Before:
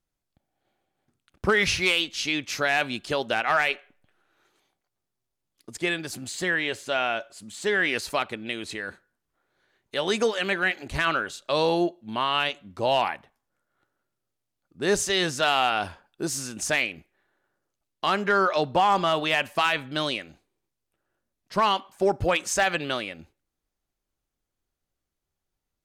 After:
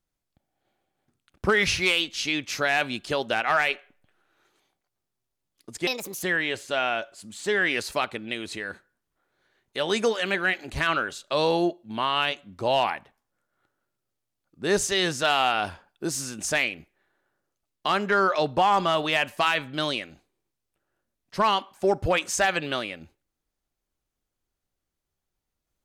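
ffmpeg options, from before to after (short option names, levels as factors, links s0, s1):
-filter_complex "[0:a]asplit=3[s0][s1][s2];[s0]atrim=end=5.874[s3];[s1]atrim=start=5.87:end=6.41,asetpts=PTS-STARTPTS,asetrate=66150,aresample=44100[s4];[s2]atrim=start=6.406[s5];[s3][s4]acrossfade=d=0.004:c1=hsin:c2=hsin[s6];[s6][s5]acrossfade=d=0.004:c1=hsin:c2=hsin"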